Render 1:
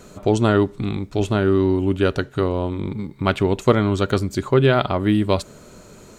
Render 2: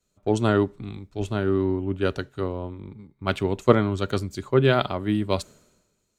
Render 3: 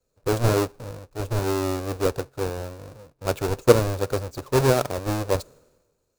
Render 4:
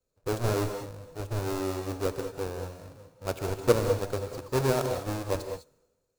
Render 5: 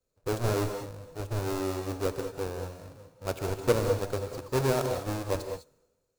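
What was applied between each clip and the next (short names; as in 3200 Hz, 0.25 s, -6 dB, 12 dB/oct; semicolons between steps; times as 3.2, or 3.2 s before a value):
three-band expander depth 100%; gain -5.5 dB
half-waves squared off; thirty-one-band EQ 200 Hz -11 dB, 500 Hz +10 dB, 2000 Hz -7 dB, 3150 Hz -7 dB; gain -5.5 dB
non-linear reverb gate 0.23 s rising, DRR 6.5 dB; gain -7 dB
soft clip -13.5 dBFS, distortion -19 dB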